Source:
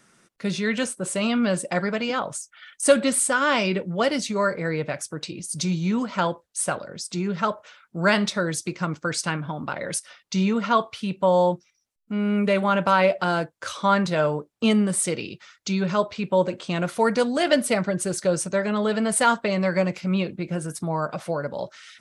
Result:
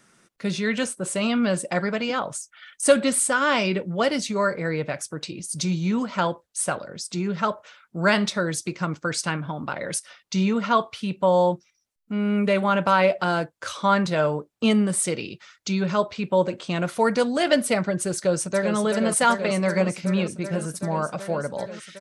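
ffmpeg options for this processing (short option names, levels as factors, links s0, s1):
-filter_complex "[0:a]asplit=2[s0][s1];[s1]afade=t=in:st=18.16:d=0.01,afade=t=out:st=18.75:d=0.01,aecho=0:1:380|760|1140|1520|1900|2280|2660|3040|3420|3800|4180|4560:0.446684|0.379681|0.322729|0.27432|0.233172|0.198196|0.168467|0.143197|0.121717|0.103459|0.0879406|0.0747495[s2];[s0][s2]amix=inputs=2:normalize=0"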